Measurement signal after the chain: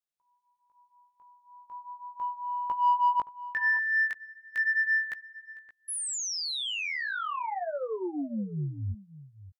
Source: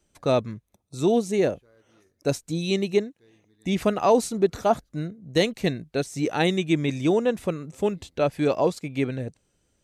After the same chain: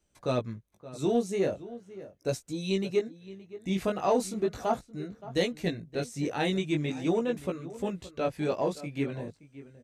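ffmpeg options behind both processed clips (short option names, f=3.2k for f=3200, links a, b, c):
-filter_complex "[0:a]flanger=delay=15.5:depth=5.6:speed=0.39,asplit=2[a][b];[b]asoftclip=type=tanh:threshold=-21dB,volume=-10dB[c];[a][c]amix=inputs=2:normalize=0,asplit=2[d][e];[e]adelay=571.4,volume=-16dB,highshelf=f=4k:g=-12.9[f];[d][f]amix=inputs=2:normalize=0,volume=-5dB"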